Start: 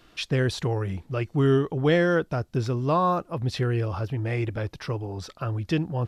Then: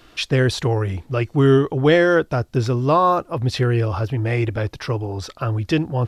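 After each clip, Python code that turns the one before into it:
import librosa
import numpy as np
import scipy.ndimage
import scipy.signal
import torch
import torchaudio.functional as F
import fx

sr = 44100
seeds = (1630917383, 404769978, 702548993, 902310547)

y = fx.peak_eq(x, sr, hz=180.0, db=-9.0, octaves=0.3)
y = F.gain(torch.from_numpy(y), 7.0).numpy()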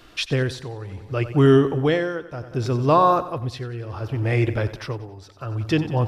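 y = fx.echo_feedback(x, sr, ms=92, feedback_pct=59, wet_db=-14)
y = y * (1.0 - 0.81 / 2.0 + 0.81 / 2.0 * np.cos(2.0 * np.pi * 0.67 * (np.arange(len(y)) / sr)))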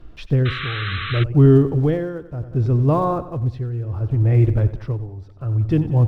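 y = fx.block_float(x, sr, bits=5)
y = fx.spec_paint(y, sr, seeds[0], shape='noise', start_s=0.45, length_s=0.79, low_hz=1100.0, high_hz=4100.0, level_db=-17.0)
y = fx.tilt_eq(y, sr, slope=-4.5)
y = F.gain(torch.from_numpy(y), -6.5).numpy()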